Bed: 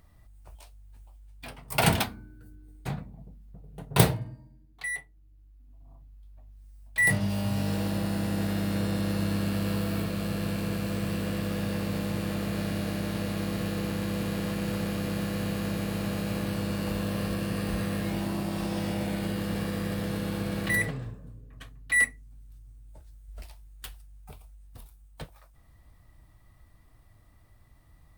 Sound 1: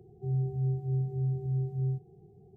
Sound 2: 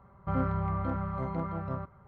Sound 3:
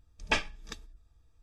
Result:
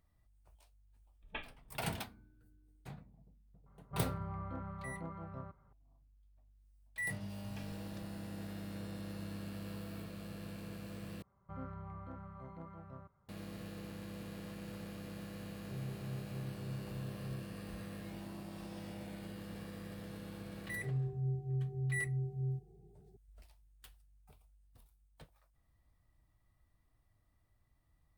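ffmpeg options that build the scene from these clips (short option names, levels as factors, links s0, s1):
-filter_complex "[3:a]asplit=2[s0][s1];[2:a]asplit=2[s2][s3];[1:a]asplit=2[s4][s5];[0:a]volume=0.158[s6];[s0]aresample=8000,aresample=44100[s7];[s1]acompressor=threshold=0.0178:ratio=6:attack=3.2:release=140:knee=1:detection=peak[s8];[s6]asplit=2[s9][s10];[s9]atrim=end=11.224[s11];[s3]atrim=end=2.07,asetpts=PTS-STARTPTS,volume=0.15[s12];[s10]atrim=start=13.286[s13];[s7]atrim=end=1.42,asetpts=PTS-STARTPTS,volume=0.158,afade=t=in:d=0.004:c=hsin,afade=t=out:st=1.416:d=0.004:c=hsin,adelay=1030[s14];[s2]atrim=end=2.07,asetpts=PTS-STARTPTS,volume=0.266,afade=t=in:d=0.004:c=hsin,afade=t=out:st=2.066:d=0.004:c=hsin,adelay=3660[s15];[s8]atrim=end=1.42,asetpts=PTS-STARTPTS,volume=0.15,afade=t=in:d=0.004:c=hsin,afade=t=out:st=1.416:d=0.004:c=hsin,adelay=7250[s16];[s4]atrim=end=2.56,asetpts=PTS-STARTPTS,volume=0.188,afade=t=in:d=0.004:c=hsin,afade=t=out:st=2.556:d=0.004:c=hsin,adelay=15460[s17];[s5]atrim=end=2.56,asetpts=PTS-STARTPTS,volume=0.473,afade=t=in:d=0.004:c=hsin,afade=t=out:st=2.556:d=0.004:c=hsin,adelay=20610[s18];[s11][s12]acrossfade=d=0.004:c1=hsin:c2=hsin[s19];[s19][s13]acrossfade=d=0.004:c1=hsin:c2=hsin[s20];[s20][s14][s15][s16][s17][s18]amix=inputs=6:normalize=0"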